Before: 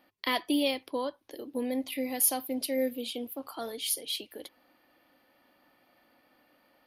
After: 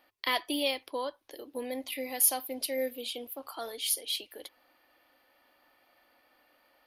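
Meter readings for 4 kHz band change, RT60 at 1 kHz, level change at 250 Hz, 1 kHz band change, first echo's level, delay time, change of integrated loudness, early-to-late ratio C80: +1.0 dB, no reverb, -7.5 dB, 0.0 dB, no echo, no echo, -0.5 dB, no reverb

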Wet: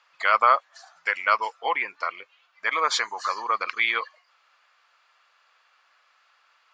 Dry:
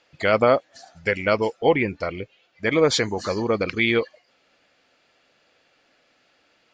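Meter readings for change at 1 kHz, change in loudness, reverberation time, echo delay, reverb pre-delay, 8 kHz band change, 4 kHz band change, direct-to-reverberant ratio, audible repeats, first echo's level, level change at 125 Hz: +5.0 dB, -2.0 dB, no reverb, no echo, no reverb, -3.0 dB, -2.0 dB, no reverb, no echo, no echo, under -35 dB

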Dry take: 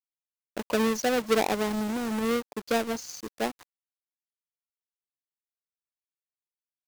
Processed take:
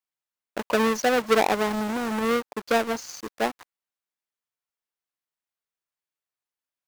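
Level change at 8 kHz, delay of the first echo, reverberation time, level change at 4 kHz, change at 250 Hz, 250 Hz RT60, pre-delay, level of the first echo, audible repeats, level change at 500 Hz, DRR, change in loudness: +1.0 dB, no echo, no reverb, +2.5 dB, +1.0 dB, no reverb, no reverb, no echo, no echo, +3.5 dB, no reverb, +3.5 dB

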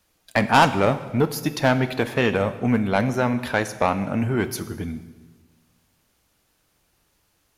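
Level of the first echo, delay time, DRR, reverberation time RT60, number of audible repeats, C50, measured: no echo, no echo, 11.0 dB, 1.3 s, no echo, 13.5 dB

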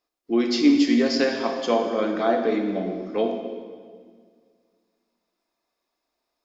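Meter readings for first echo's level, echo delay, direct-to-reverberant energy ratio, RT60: no echo, no echo, 3.0 dB, 1.8 s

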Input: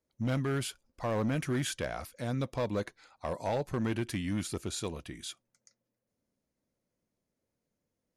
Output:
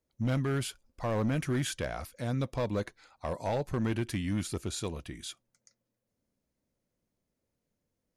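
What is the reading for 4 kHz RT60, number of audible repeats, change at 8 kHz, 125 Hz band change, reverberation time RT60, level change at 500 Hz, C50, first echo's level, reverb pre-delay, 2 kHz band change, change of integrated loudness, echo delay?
no reverb, no echo, 0.0 dB, +2.5 dB, no reverb, 0.0 dB, no reverb, no echo, no reverb, 0.0 dB, +1.0 dB, no echo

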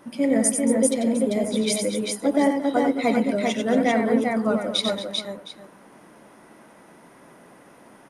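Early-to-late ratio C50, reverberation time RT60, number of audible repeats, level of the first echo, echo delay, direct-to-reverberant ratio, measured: no reverb, no reverb, 4, -6.0 dB, 92 ms, no reverb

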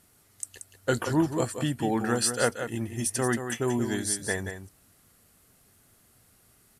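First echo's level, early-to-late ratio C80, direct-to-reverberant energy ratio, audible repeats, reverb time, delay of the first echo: -8.5 dB, no reverb, no reverb, 1, no reverb, 180 ms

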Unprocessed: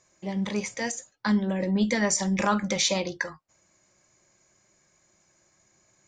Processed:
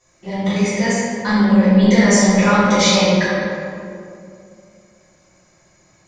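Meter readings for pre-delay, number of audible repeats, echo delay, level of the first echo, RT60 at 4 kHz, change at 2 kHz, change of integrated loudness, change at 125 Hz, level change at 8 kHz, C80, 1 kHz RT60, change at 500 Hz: 3 ms, no echo, no echo, no echo, 1.3 s, +11.5 dB, +12.0 dB, +13.5 dB, +7.0 dB, -1.0 dB, 2.2 s, +13.0 dB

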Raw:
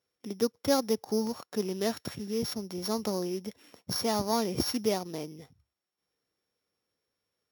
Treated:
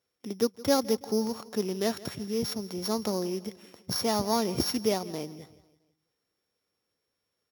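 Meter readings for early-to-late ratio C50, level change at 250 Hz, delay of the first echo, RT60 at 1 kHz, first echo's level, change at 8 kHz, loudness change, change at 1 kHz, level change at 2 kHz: no reverb, +1.5 dB, 166 ms, no reverb, -19.5 dB, +1.5 dB, +1.5 dB, +1.5 dB, +1.5 dB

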